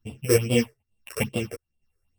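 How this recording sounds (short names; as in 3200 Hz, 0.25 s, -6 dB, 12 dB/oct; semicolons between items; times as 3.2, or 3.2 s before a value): a buzz of ramps at a fixed pitch in blocks of 16 samples; phasing stages 6, 2.4 Hz, lowest notch 200–1700 Hz; chopped level 1.1 Hz, depth 60%, duty 40%; a shimmering, thickened sound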